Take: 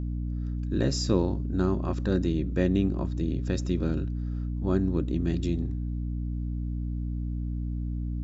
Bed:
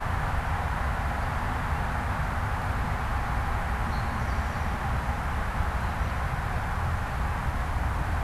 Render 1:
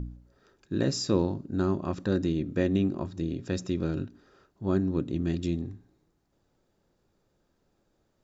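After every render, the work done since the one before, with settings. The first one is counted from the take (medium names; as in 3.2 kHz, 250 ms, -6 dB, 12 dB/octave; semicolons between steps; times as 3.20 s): de-hum 60 Hz, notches 5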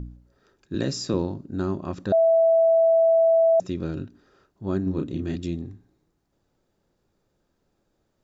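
0.74–1.14 s: three bands compressed up and down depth 40%; 2.12–3.60 s: bleep 658 Hz -14.5 dBFS; 4.83–5.36 s: doubling 32 ms -4.5 dB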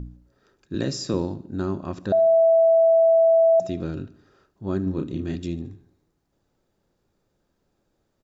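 feedback delay 73 ms, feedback 52%, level -19 dB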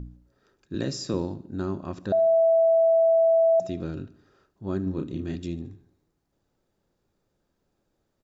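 trim -3 dB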